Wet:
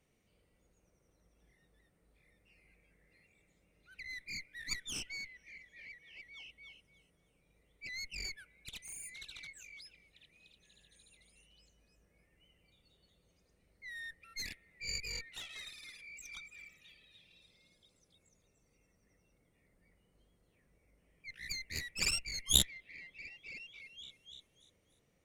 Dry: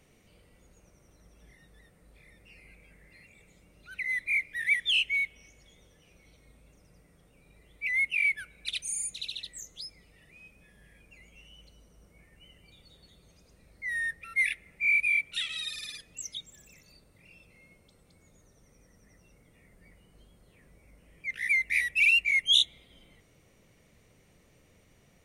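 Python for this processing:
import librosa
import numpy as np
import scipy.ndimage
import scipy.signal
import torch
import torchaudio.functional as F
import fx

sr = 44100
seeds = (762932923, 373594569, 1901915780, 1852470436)

y = fx.echo_stepped(x, sr, ms=296, hz=390.0, octaves=0.7, feedback_pct=70, wet_db=-2.5)
y = fx.cheby_harmonics(y, sr, harmonics=(2, 3), levels_db=(-11, -8), full_scale_db=-11.5)
y = y * librosa.db_to_amplitude(1.0)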